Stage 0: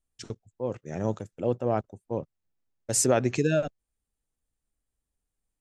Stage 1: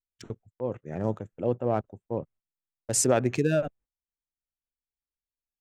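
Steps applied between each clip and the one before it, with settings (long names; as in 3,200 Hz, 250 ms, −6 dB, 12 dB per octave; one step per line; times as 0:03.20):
adaptive Wiener filter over 9 samples
noise gate −53 dBFS, range −18 dB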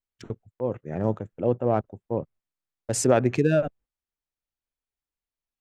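high-shelf EQ 4,700 Hz −9.5 dB
level +3.5 dB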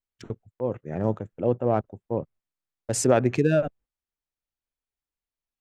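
no processing that can be heard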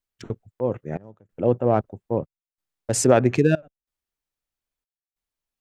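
gate pattern "xxxxxx.." 93 BPM −24 dB
level +3.5 dB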